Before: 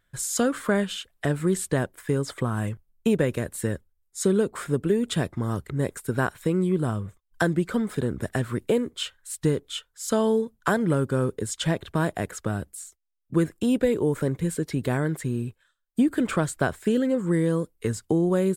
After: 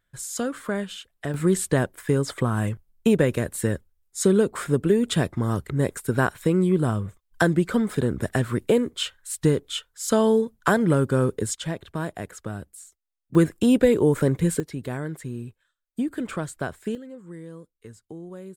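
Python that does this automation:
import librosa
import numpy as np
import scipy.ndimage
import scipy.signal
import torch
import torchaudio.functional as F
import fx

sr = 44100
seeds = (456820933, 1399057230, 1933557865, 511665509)

y = fx.gain(x, sr, db=fx.steps((0.0, -4.5), (1.34, 3.0), (11.55, -5.0), (13.35, 4.5), (14.6, -5.5), (16.95, -17.0)))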